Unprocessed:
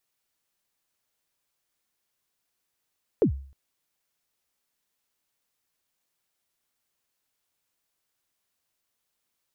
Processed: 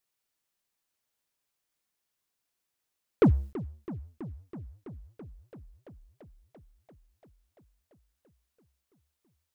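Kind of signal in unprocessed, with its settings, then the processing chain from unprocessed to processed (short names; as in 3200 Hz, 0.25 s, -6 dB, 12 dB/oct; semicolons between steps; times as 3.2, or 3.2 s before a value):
kick drum length 0.31 s, from 510 Hz, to 68 Hz, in 96 ms, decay 0.48 s, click off, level -14 dB
sample leveller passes 2; warbling echo 0.334 s, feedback 78%, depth 217 cents, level -16 dB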